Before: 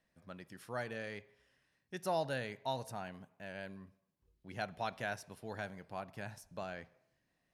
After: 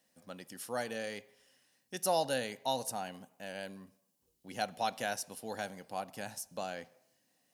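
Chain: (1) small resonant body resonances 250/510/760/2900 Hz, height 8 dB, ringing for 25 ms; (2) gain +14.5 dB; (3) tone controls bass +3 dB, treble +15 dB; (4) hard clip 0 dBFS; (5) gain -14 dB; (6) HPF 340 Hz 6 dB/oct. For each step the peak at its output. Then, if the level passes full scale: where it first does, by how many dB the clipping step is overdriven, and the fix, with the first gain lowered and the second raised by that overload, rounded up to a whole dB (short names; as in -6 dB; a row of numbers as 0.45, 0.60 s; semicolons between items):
-19.0, -4.5, -4.0, -4.0, -18.0, -18.5 dBFS; no overload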